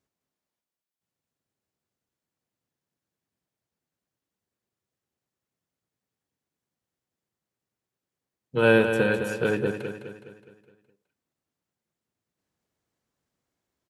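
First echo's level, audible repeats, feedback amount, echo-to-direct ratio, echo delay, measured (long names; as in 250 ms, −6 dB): −8.0 dB, 5, 48%, −7.0 dB, 208 ms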